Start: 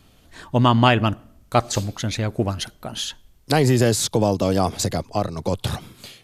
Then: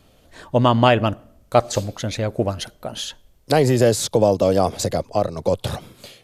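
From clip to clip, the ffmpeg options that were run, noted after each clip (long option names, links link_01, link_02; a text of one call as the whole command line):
ffmpeg -i in.wav -af "equalizer=frequency=550:width=2:gain=8.5,volume=-1.5dB" out.wav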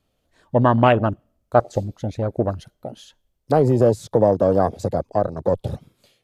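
ffmpeg -i in.wav -af "afwtdn=0.0631" out.wav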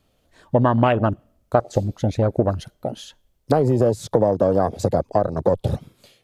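ffmpeg -i in.wav -af "acompressor=threshold=-20dB:ratio=5,volume=6dB" out.wav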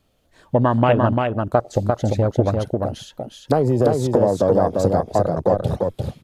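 ffmpeg -i in.wav -af "aecho=1:1:346:0.668" out.wav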